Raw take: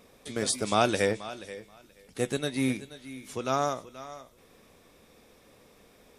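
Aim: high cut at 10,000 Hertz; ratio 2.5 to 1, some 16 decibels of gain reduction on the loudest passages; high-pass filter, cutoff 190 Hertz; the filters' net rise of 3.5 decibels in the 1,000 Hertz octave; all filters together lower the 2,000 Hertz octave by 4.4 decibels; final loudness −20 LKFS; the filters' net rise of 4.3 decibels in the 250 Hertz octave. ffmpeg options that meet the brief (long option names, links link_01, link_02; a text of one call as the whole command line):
ffmpeg -i in.wav -af "highpass=190,lowpass=10000,equalizer=frequency=250:width_type=o:gain=6,equalizer=frequency=1000:width_type=o:gain=7,equalizer=frequency=2000:width_type=o:gain=-8.5,acompressor=threshold=-40dB:ratio=2.5,volume=20.5dB" out.wav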